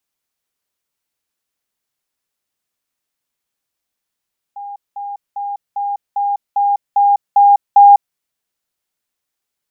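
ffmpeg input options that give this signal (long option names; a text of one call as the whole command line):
ffmpeg -f lavfi -i "aevalsrc='pow(10,(-26+3*floor(t/0.4))/20)*sin(2*PI*810*t)*clip(min(mod(t,0.4),0.2-mod(t,0.4))/0.005,0,1)':duration=3.6:sample_rate=44100" out.wav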